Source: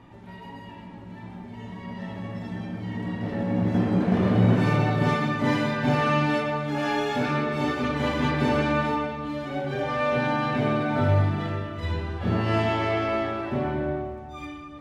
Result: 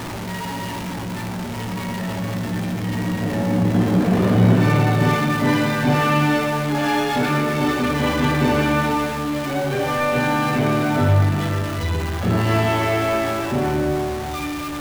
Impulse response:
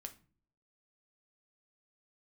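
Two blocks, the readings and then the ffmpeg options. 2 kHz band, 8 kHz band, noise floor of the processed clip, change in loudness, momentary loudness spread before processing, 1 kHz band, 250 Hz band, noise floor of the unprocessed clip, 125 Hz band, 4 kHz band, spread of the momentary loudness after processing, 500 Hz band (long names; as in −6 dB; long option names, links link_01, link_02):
+6.0 dB, can't be measured, −28 dBFS, +5.0 dB, 17 LU, +5.5 dB, +5.5 dB, −42 dBFS, +6.0 dB, +7.5 dB, 10 LU, +5.0 dB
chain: -filter_complex "[0:a]aeval=exprs='val(0)+0.5*0.0398*sgn(val(0))':channel_layout=same,asplit=2[link_01][link_02];[1:a]atrim=start_sample=2205[link_03];[link_02][link_03]afir=irnorm=-1:irlink=0,volume=-1dB[link_04];[link_01][link_04]amix=inputs=2:normalize=0"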